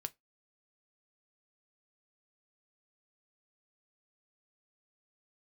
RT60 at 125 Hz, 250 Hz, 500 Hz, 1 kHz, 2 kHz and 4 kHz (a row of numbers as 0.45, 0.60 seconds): 0.15, 0.20, 0.20, 0.15, 0.15, 0.15 seconds